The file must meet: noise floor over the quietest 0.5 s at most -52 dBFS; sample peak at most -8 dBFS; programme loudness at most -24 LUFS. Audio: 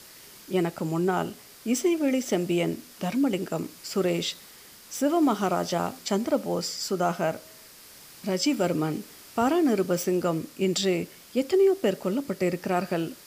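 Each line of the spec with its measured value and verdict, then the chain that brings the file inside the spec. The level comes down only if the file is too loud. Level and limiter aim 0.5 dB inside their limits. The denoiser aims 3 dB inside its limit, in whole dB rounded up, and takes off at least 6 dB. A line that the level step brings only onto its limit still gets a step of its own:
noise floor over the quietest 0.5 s -49 dBFS: fail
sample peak -13.0 dBFS: pass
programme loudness -27.0 LUFS: pass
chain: noise reduction 6 dB, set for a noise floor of -49 dBFS

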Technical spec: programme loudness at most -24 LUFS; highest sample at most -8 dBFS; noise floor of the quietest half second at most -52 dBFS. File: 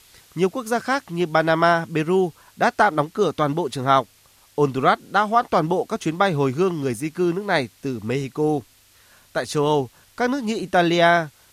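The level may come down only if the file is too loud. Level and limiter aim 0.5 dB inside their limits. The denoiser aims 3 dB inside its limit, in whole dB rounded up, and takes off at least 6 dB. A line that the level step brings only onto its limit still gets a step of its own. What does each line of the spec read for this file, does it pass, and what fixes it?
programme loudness -21.5 LUFS: fail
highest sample -4.0 dBFS: fail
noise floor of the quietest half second -55 dBFS: pass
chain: trim -3 dB; peak limiter -8.5 dBFS

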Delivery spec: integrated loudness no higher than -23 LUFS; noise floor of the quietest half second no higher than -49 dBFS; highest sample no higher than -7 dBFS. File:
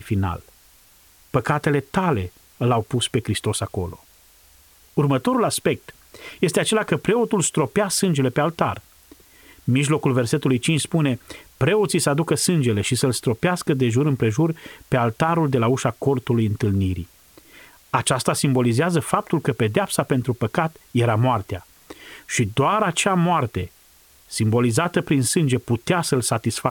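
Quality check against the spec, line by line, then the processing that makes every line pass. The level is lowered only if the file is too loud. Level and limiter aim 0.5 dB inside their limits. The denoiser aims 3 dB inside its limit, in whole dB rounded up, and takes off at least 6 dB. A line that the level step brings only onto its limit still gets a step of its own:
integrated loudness -21.0 LUFS: fail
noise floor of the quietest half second -53 dBFS: pass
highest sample -3.5 dBFS: fail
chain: trim -2.5 dB; peak limiter -7.5 dBFS

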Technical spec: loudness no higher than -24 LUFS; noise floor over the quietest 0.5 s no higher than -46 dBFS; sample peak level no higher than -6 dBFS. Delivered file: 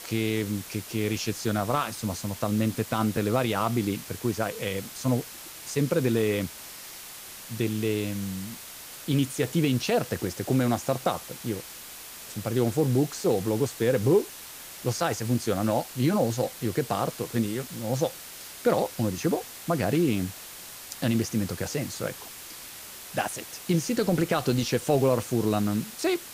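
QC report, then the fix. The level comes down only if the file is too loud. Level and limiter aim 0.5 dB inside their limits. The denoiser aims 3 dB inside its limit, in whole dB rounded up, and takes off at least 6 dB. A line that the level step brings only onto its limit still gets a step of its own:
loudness -27.5 LUFS: pass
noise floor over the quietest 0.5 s -43 dBFS: fail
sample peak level -10.5 dBFS: pass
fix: noise reduction 6 dB, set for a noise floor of -43 dBFS

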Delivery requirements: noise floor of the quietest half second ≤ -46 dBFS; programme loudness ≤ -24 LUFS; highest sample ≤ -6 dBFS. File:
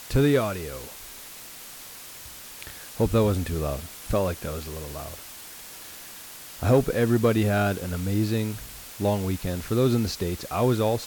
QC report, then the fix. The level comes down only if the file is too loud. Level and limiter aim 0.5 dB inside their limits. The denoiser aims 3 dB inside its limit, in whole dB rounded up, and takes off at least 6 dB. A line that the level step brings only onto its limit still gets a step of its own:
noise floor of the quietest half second -42 dBFS: fail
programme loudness -25.5 LUFS: pass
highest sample -9.5 dBFS: pass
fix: noise reduction 7 dB, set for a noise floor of -42 dBFS

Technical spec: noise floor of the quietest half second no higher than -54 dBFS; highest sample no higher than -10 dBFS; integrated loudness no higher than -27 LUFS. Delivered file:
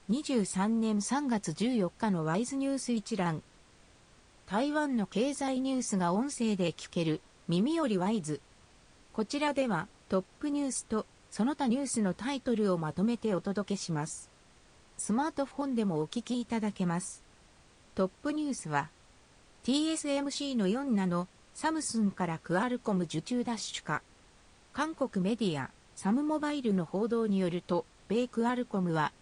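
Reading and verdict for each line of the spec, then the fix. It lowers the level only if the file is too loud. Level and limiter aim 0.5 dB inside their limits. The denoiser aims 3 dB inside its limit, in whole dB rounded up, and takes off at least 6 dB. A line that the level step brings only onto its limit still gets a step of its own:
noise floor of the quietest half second -60 dBFS: pass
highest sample -15.0 dBFS: pass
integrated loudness -32.5 LUFS: pass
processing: none needed

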